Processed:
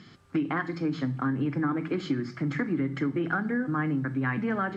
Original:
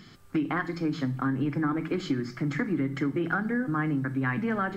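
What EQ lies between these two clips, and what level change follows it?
high-pass 61 Hz; distance through air 59 m; 0.0 dB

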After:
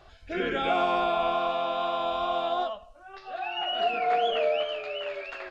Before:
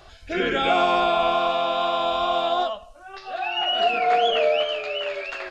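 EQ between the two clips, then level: treble shelf 4.4 kHz -9 dB; -5.0 dB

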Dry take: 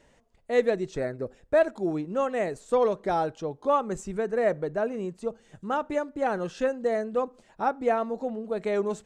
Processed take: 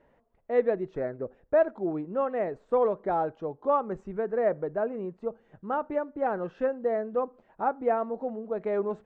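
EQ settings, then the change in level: low-pass 1.4 kHz 12 dB/octave; bass shelf 220 Hz -6.5 dB; 0.0 dB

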